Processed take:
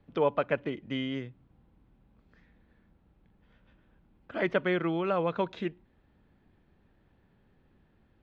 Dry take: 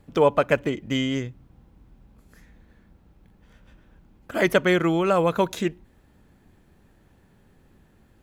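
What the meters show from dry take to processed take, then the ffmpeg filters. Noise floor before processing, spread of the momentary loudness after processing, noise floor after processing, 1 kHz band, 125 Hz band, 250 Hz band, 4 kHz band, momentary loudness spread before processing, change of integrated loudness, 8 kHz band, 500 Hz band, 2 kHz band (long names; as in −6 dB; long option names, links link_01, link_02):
−59 dBFS, 10 LU, −67 dBFS, −8.0 dB, −9.0 dB, −8.0 dB, −10.0 dB, 10 LU, −8.0 dB, below −25 dB, −8.0 dB, −8.5 dB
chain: -filter_complex "[0:a]lowpass=frequency=4000:width=0.5412,lowpass=frequency=4000:width=1.3066,acrossover=split=100|2900[link_01][link_02][link_03];[link_01]acompressor=threshold=-55dB:ratio=6[link_04];[link_03]alimiter=level_in=6.5dB:limit=-24dB:level=0:latency=1,volume=-6.5dB[link_05];[link_04][link_02][link_05]amix=inputs=3:normalize=0,volume=-8dB"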